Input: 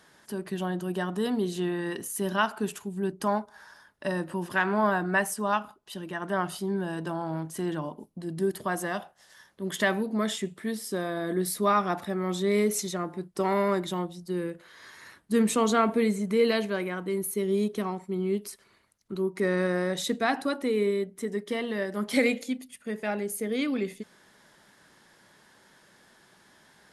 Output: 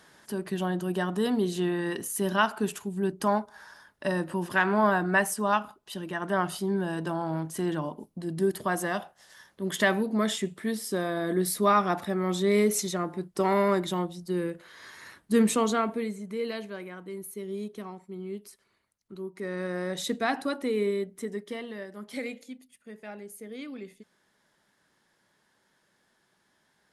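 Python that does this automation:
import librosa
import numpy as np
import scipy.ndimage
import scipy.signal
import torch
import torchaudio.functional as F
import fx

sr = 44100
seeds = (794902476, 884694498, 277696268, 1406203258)

y = fx.gain(x, sr, db=fx.line((15.45, 1.5), (16.16, -9.0), (19.42, -9.0), (20.05, -1.5), (21.18, -1.5), (22.02, -11.5)))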